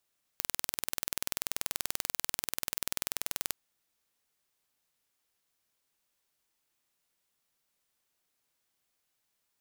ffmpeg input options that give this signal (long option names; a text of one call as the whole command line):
ffmpeg -f lavfi -i "aevalsrc='0.631*eq(mod(n,2141),0)':duration=3.12:sample_rate=44100" out.wav